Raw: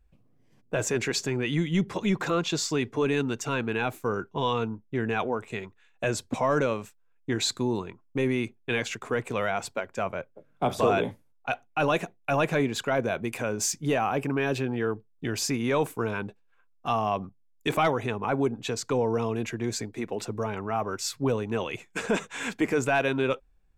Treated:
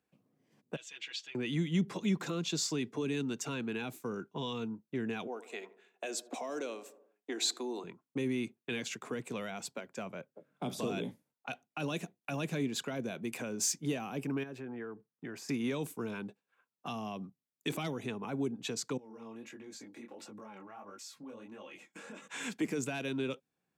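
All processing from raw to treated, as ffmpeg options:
ffmpeg -i in.wav -filter_complex "[0:a]asettb=1/sr,asplit=3[link_01][link_02][link_03];[link_01]atrim=end=0.764[link_04];[link_02]atrim=start=0.76:end=1.35,asetpts=PTS-STARTPTS,afade=type=in:duration=0.004:curve=qsin,afade=type=out:start_time=0.586:duration=0.004:curve=qsin,bandpass=frequency=3200:width_type=q:width=4.2,aecho=1:1:6.1:0.87,atrim=end_sample=26019[link_05];[link_03]atrim=start=1.346[link_06];[link_04][link_05]acrossfade=duration=0.004:curve1=hsin:curve2=qsin[link_07];[link_07][link_06]acrossfade=duration=0.004:curve1=qsin:curve2=hsin,asettb=1/sr,asplit=3[link_08][link_09][link_10];[link_08]atrim=end=5.274[link_11];[link_09]atrim=start=5.27:end=7.84,asetpts=PTS-STARTPTS,afade=type=in:duration=0.004:curve=qsin,afade=type=out:start_time=2.566:duration=0.004:curve=qsin,highpass=frequency=320:width=0.5412,highpass=frequency=320:width=1.3066,equalizer=frequency=720:width_type=o:width=0.21:gain=9.5,asplit=2[link_12][link_13];[link_13]adelay=77,lowpass=frequency=960:poles=1,volume=-15.5dB,asplit=2[link_14][link_15];[link_15]adelay=77,lowpass=frequency=960:poles=1,volume=0.53,asplit=2[link_16][link_17];[link_17]adelay=77,lowpass=frequency=960:poles=1,volume=0.53,asplit=2[link_18][link_19];[link_19]adelay=77,lowpass=frequency=960:poles=1,volume=0.53,asplit=2[link_20][link_21];[link_21]adelay=77,lowpass=frequency=960:poles=1,volume=0.53[link_22];[link_12][link_14][link_16][link_18][link_20][link_22]amix=inputs=6:normalize=0,atrim=end_sample=113337[link_23];[link_10]atrim=start=7.836[link_24];[link_11][link_23]acrossfade=duration=0.004:curve1=hsin:curve2=qsin[link_25];[link_25][link_24]acrossfade=duration=0.004:curve1=qsin:curve2=hsin,asettb=1/sr,asplit=3[link_26][link_27][link_28];[link_26]atrim=end=14.434[link_29];[link_27]atrim=start=14.43:end=15.49,asetpts=PTS-STARTPTS,afade=type=in:duration=0.004:curve=qsin,afade=type=out:start_time=1.056:duration=0.004:curve=qsin,acompressor=threshold=-40dB:ratio=2:attack=3.2:release=140:knee=1:detection=peak,highshelf=frequency=2400:width_type=q:width=1.5:gain=-7[link_30];[link_28]atrim=start=15.486[link_31];[link_29][link_30]acrossfade=duration=0.004:curve1=hsin:curve2=qsin[link_32];[link_32][link_31]acrossfade=duration=0.004:curve1=qsin:curve2=hsin,asettb=1/sr,asplit=3[link_33][link_34][link_35];[link_33]atrim=end=18.974[link_36];[link_34]atrim=start=18.97:end=22.28,asetpts=PTS-STARTPTS,afade=type=in:duration=0.004:curve=qsin,afade=type=out:start_time=3.306:duration=0.004:curve=qsin,aecho=1:1:3.6:0.55,atrim=end_sample=145971,acompressor=threshold=-39dB:ratio=6:attack=3.2:release=140:knee=1:detection=peak,flanger=delay=19:depth=7.9:speed=1.5[link_37];[link_35]atrim=start=22.276[link_38];[link_36][link_37]acrossfade=duration=0.004:curve1=hsin:curve2=qsin[link_39];[link_39][link_38]acrossfade=duration=0.004:curve1=qsin:curve2=hsin,highpass=frequency=150:width=0.5412,highpass=frequency=150:width=1.3066,acrossover=split=320|3000[link_40][link_41][link_42];[link_41]acompressor=threshold=-39dB:ratio=6[link_43];[link_40][link_43][link_42]amix=inputs=3:normalize=0,volume=-3.5dB" out.wav

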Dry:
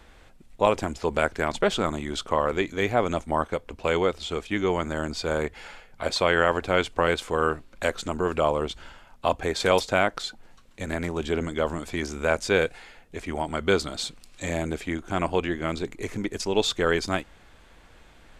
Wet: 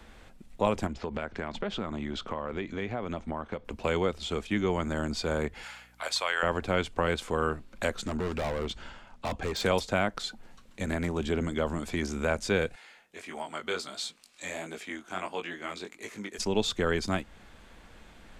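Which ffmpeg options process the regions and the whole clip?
ffmpeg -i in.wav -filter_complex "[0:a]asettb=1/sr,asplit=3[link_01][link_02][link_03];[link_01]atrim=end=0.874[link_04];[link_02]atrim=start=0.87:end=3.65,asetpts=PTS-STARTPTS,afade=type=in:duration=0.004:curve=qsin,afade=type=out:start_time=2.776:duration=0.004:curve=qsin,lowpass=4100,acompressor=threshold=-32dB:ratio=2.5:attack=3.2:release=140:knee=1:detection=peak[link_05];[link_03]atrim=start=3.646[link_06];[link_04][link_05]acrossfade=duration=0.004:curve1=hsin:curve2=qsin[link_07];[link_07][link_06]acrossfade=duration=0.004:curve1=qsin:curve2=hsin,asettb=1/sr,asplit=3[link_08][link_09][link_10];[link_08]atrim=end=5.634[link_11];[link_09]atrim=start=5.63:end=6.43,asetpts=PTS-STARTPTS,afade=type=in:duration=0.004:curve=qsin,afade=type=out:start_time=0.796:duration=0.004:curve=qsin,highpass=910,highshelf=frequency=7600:gain=7,aeval=exprs='val(0)+0.000891*(sin(2*PI*60*n/s)+sin(2*PI*2*60*n/s)/2+sin(2*PI*3*60*n/s)/3+sin(2*PI*4*60*n/s)/4+sin(2*PI*5*60*n/s)/5)':channel_layout=same[link_12];[link_10]atrim=start=6.426[link_13];[link_11][link_12]acrossfade=duration=0.004:curve1=hsin:curve2=qsin[link_14];[link_14][link_13]acrossfade=duration=0.004:curve1=qsin:curve2=hsin,asettb=1/sr,asplit=3[link_15][link_16][link_17];[link_15]atrim=end=8.054[link_18];[link_16]atrim=start=8.05:end=9.62,asetpts=PTS-STARTPTS,afade=type=in:duration=0.004:curve=qsin,afade=type=out:start_time=1.566:duration=0.004:curve=qsin,lowpass=7900,asoftclip=type=hard:threshold=-26.5dB[link_19];[link_17]atrim=start=9.616[link_20];[link_18][link_19]acrossfade=duration=0.004:curve1=hsin:curve2=qsin[link_21];[link_21][link_20]acrossfade=duration=0.004:curve1=qsin:curve2=hsin,asettb=1/sr,asplit=3[link_22][link_23][link_24];[link_22]atrim=end=12.754[link_25];[link_23]atrim=start=12.75:end=16.38,asetpts=PTS-STARTPTS,afade=type=in:duration=0.004:curve=qsin,afade=type=out:start_time=3.626:duration=0.004:curve=qsin,highpass=frequency=930:poles=1,flanger=delay=17.5:depth=5.2:speed=1.5[link_26];[link_24]atrim=start=16.376[link_27];[link_25][link_26]acrossfade=duration=0.004:curve1=hsin:curve2=qsin[link_28];[link_28][link_27]acrossfade=duration=0.004:curve1=qsin:curve2=hsin,equalizer=frequency=210:width=3.7:gain=6.5,acrossover=split=140[link_29][link_30];[link_30]acompressor=threshold=-33dB:ratio=1.5[link_31];[link_29][link_31]amix=inputs=2:normalize=0" out.wav

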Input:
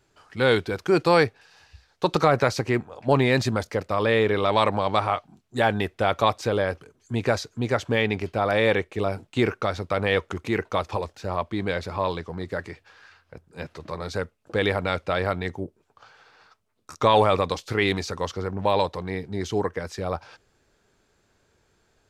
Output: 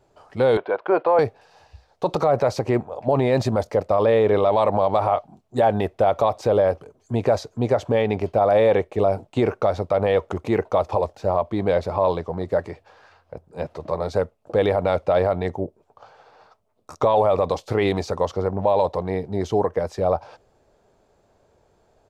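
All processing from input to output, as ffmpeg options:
ffmpeg -i in.wav -filter_complex "[0:a]asettb=1/sr,asplit=3[link_01][link_02][link_03];[link_01]atrim=end=0.574[link_04];[link_02]atrim=start=0.57:end=1.19,asetpts=PTS-STARTPTS,afade=type=in:duration=0.004:curve=qsin,afade=type=out:start_time=0.616:duration=0.004:curve=qsin,deesser=0.85,highpass=460,equalizer=frequency=590:width_type=q:width=4:gain=4,equalizer=frequency=1000:width_type=q:width=4:gain=6,equalizer=frequency=1500:width_type=q:width=4:gain=6,lowpass=frequency=3100:width=0.5412,lowpass=frequency=3100:width=1.3066[link_05];[link_03]atrim=start=1.186[link_06];[link_04][link_05]acrossfade=duration=0.004:curve1=hsin:curve2=qsin[link_07];[link_07][link_06]acrossfade=duration=0.004:curve1=qsin:curve2=hsin,firequalizer=gain_entry='entry(320,0);entry(620,9);entry(1500,-7)':delay=0.05:min_phase=1,alimiter=level_in=12dB:limit=-1dB:release=50:level=0:latency=1,volume=-8.5dB" out.wav

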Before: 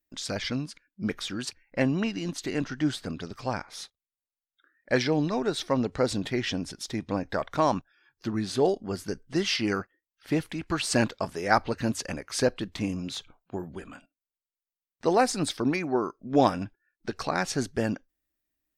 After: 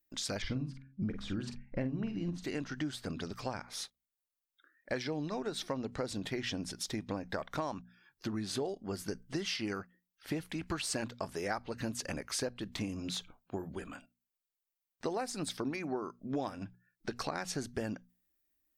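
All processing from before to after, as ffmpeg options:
ffmpeg -i in.wav -filter_complex "[0:a]asettb=1/sr,asplit=3[link_01][link_02][link_03];[link_01]atrim=end=0.424[link_04];[link_02]atrim=start=0.42:end=2.44,asetpts=PTS-STARTPTS,afade=type=in:duration=0.004:curve=qsin,afade=type=out:start_time=2.016:duration=0.004:curve=qsin,aemphasis=mode=reproduction:type=riaa,asplit=2[link_05][link_06];[link_06]adelay=46,volume=-9dB[link_07];[link_05][link_07]amix=inputs=2:normalize=0,atrim=end_sample=89082,bandreject=frequency=67.24:width_type=h:width=4,bandreject=frequency=134.48:width_type=h:width=4,bandreject=frequency=201.72:width_type=h:width=4,bandreject=frequency=268.96:width_type=h:width=4[link_08];[link_03]atrim=start=2.436[link_09];[link_04][link_08]acrossfade=duration=0.004:curve1=hsin:curve2=qsin[link_10];[link_10][link_09]acrossfade=duration=0.004:curve1=qsin:curve2=hsin,highshelf=frequency=11000:gain=7,bandreject=frequency=60:width_type=h:width=6,bandreject=frequency=120:width_type=h:width=6,bandreject=frequency=180:width_type=h:width=6,bandreject=frequency=240:width_type=h:width=6,acompressor=threshold=-32dB:ratio=6,volume=-1.5dB" out.wav

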